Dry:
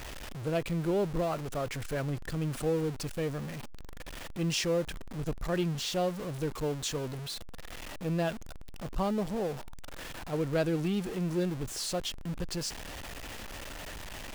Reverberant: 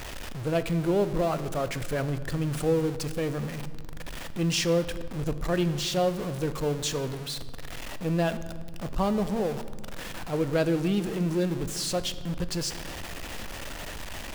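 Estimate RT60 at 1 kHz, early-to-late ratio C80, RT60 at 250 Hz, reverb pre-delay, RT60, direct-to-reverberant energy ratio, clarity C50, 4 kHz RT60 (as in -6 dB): 1.6 s, 15.0 dB, 2.6 s, 4 ms, 1.7 s, 11.5 dB, 13.5 dB, 1.2 s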